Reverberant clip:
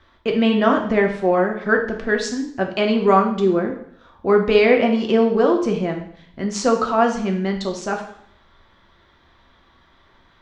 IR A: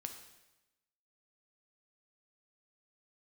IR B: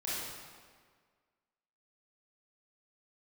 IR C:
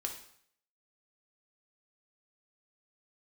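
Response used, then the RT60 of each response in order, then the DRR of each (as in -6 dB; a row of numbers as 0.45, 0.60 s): C; 1.0, 1.7, 0.65 s; 5.0, -9.5, 2.0 dB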